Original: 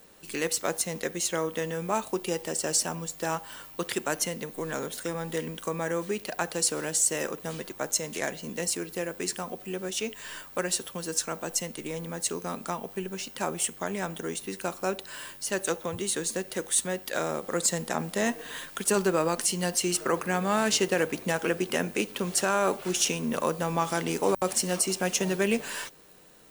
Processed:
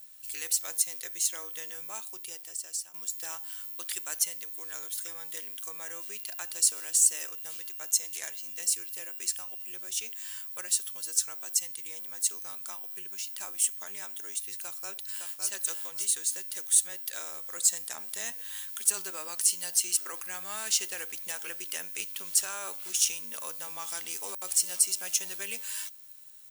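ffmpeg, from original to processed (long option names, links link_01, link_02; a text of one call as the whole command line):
ffmpeg -i in.wav -filter_complex "[0:a]asettb=1/sr,asplit=3[link_01][link_02][link_03];[link_01]atrim=end=5.854[link_04];[link_02]atrim=start=5.85:end=9.65,asetpts=PTS-STARTPTS,afade=type=in:duration=0.004:curve=qsin,afade=type=out:start_time=3.796:duration=0.004:curve=qsin,aeval=exprs='val(0)+0.002*sin(2*PI*2800*n/s)':channel_layout=same[link_05];[link_03]atrim=start=9.646[link_06];[link_04][link_05]acrossfade=duration=0.004:curve1=hsin:curve2=qsin[link_07];[link_07][link_06]acrossfade=duration=0.004:curve1=qsin:curve2=hsin,asplit=2[link_08][link_09];[link_09]afade=type=in:start_time=14.52:duration=0.01,afade=type=out:start_time=15.49:duration=0.01,aecho=0:1:560|1120|1680:0.595662|0.148916|0.0372289[link_10];[link_08][link_10]amix=inputs=2:normalize=0,asplit=2[link_11][link_12];[link_11]atrim=end=2.94,asetpts=PTS-STARTPTS,afade=type=out:start_time=1.75:duration=1.19:silence=0.177828[link_13];[link_12]atrim=start=2.94,asetpts=PTS-STARTPTS,afade=type=in:duration=0.004:curve=hsin:silence=0.177828[link_14];[link_13][link_14]concat=n=2:v=0:a=1,aderivative,volume=2dB" out.wav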